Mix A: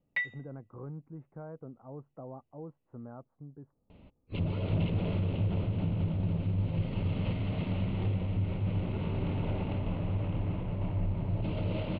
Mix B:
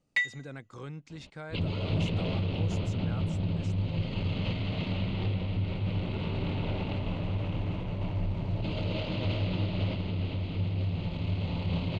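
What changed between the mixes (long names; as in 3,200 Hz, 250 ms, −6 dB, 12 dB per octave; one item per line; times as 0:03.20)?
speech: remove low-pass filter 1,100 Hz 24 dB per octave
second sound: entry −2.80 s
master: remove high-frequency loss of the air 430 metres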